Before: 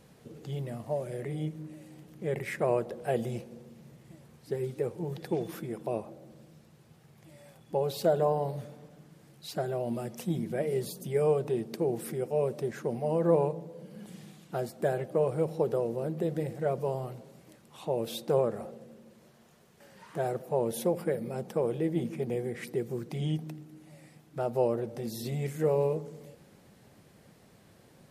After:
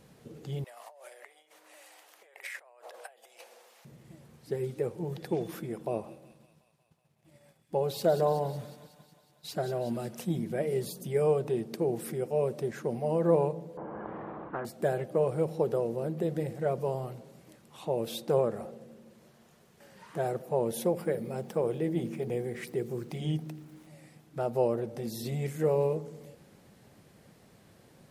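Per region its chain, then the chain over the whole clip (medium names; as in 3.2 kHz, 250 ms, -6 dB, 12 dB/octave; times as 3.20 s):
0.64–3.85 s: compressor with a negative ratio -42 dBFS + high-pass 710 Hz 24 dB/octave
5.85–10.25 s: expander -48 dBFS + feedback echo behind a high-pass 184 ms, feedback 66%, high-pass 2 kHz, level -9 dB
13.77–14.65 s: low-pass 1.1 kHz 24 dB/octave + resonant low shelf 230 Hz -9 dB, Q 3 + spectrum-flattening compressor 4:1
21.03–23.87 s: de-hum 46.89 Hz, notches 9 + small samples zeroed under -56.5 dBFS
whole clip: none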